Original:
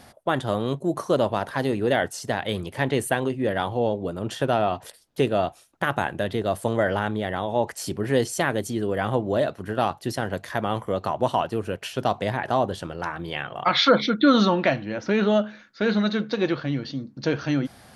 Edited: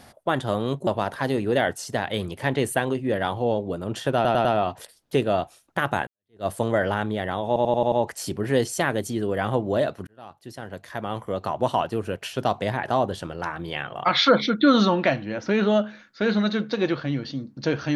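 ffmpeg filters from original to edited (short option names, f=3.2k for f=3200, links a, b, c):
-filter_complex "[0:a]asplit=12[a][b][c][d][e][f][g][h][i][j][k][l];[a]atrim=end=0.872[m];[b]atrim=start=1.218:end=4.602[n];[c]atrim=start=4.498:end=4.602[o];[d]atrim=start=4.498:end=4.602[p];[e]atrim=start=4.498:end=6.12,asetpts=PTS-STARTPTS,afade=t=out:st=1.618:d=0.004:c=hsin[q];[f]atrim=start=6.12:end=7.612,asetpts=PTS-STARTPTS,afade=t=in:d=0.39:c=exp[r];[g]atrim=start=7.518:end=7.612[s];[h]atrim=start=7.518:end=7.612[t];[i]atrim=start=7.518:end=7.612[u];[j]atrim=start=7.518:end=7.612[v];[k]atrim=start=7.518:end=9.67,asetpts=PTS-STARTPTS,afade=t=out:st=2.148:d=0.004:c=hsin[w];[l]atrim=start=9.67,asetpts=PTS-STARTPTS,afade=t=in:d=1.64[x];[m][n]acrossfade=d=0.004:c1=hsin:c2=hsin[y];[y][o]acrossfade=d=0.004:c1=hsin:c2=hsin[z];[z][p]acrossfade=d=0.004:c1=hsin:c2=hsin[aa];[q][r]concat=n=2:v=0:a=1[ab];[aa][ab]acrossfade=d=0.004:c1=hsin:c2=hsin[ac];[ac][s]acrossfade=d=0.004:c1=hsin:c2=hsin[ad];[ad][t]acrossfade=d=0.004:c1=hsin:c2=hsin[ae];[ae][u]acrossfade=d=0.004:c1=hsin:c2=hsin[af];[af][v]acrossfade=d=0.004:c1=hsin:c2=hsin[ag];[w][x]concat=n=2:v=0:a=1[ah];[ag][ah]acrossfade=d=0.004:c1=hsin:c2=hsin"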